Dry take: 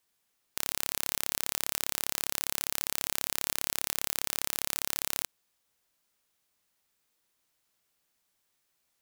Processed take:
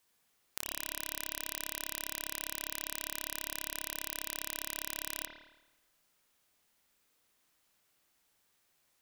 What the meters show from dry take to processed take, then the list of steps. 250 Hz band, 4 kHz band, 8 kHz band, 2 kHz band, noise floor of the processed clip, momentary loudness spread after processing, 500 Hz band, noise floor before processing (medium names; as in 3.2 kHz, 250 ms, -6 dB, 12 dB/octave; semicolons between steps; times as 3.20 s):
-3.5 dB, -6.5 dB, -7.0 dB, -3.5 dB, -75 dBFS, 2 LU, -5.0 dB, -77 dBFS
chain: compression 1.5:1, threshold -49 dBFS, peak gain reduction 9 dB; spring tank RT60 1 s, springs 54 ms, chirp 65 ms, DRR 2.5 dB; trim +2 dB